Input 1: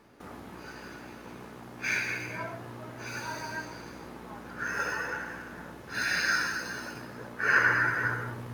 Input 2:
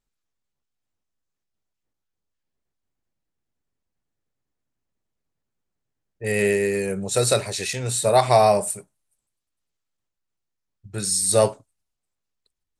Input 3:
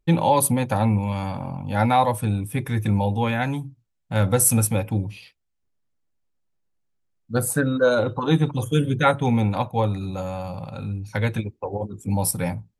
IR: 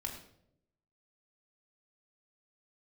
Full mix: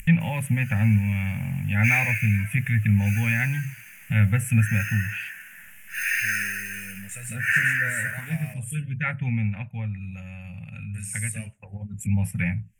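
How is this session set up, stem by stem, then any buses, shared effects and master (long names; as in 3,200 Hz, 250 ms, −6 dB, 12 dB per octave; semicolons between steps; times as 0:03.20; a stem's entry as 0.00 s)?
+2.5 dB, 0.00 s, no send, high-pass filter 1,300 Hz 6 dB per octave
−7.0 dB, 0.00 s, no send, downward compressor 2.5 to 1, threshold −25 dBFS, peak gain reduction 9.5 dB; high-shelf EQ 4,700 Hz −10 dB
+2.5 dB, 0.00 s, no send, upward compression, threshold −22 dBFS; treble cut that deepens with the level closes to 2,200 Hz, closed at −20 dBFS; automatic ducking −9 dB, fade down 1.65 s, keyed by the second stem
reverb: not used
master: drawn EQ curve 130 Hz 0 dB, 220 Hz −3 dB, 320 Hz −28 dB, 630 Hz −17 dB, 1,100 Hz −21 dB, 1,800 Hz +6 dB, 2,700 Hz +9 dB, 4,100 Hz −21 dB, 7,200 Hz +5 dB, 12,000 Hz +13 dB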